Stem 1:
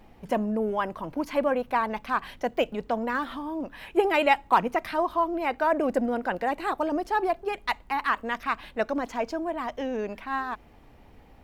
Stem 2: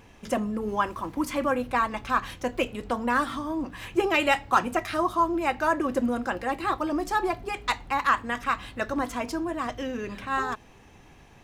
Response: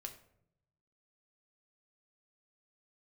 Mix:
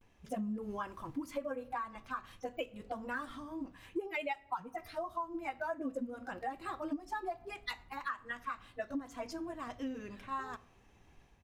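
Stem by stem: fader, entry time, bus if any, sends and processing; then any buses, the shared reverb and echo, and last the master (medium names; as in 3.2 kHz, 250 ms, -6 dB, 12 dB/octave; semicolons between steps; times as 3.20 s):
-2.5 dB, 0.00 s, send -7 dB, expander on every frequency bin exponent 3; small resonant body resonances 270/2100 Hz, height 10 dB, ringing for 100 ms
-16.5 dB, 12 ms, polarity flipped, send -15.5 dB, level rider gain up to 14 dB; auto duck -12 dB, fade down 1.70 s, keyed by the first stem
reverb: on, RT60 0.75 s, pre-delay 5 ms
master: compression 6:1, threshold -35 dBFS, peak gain reduction 16 dB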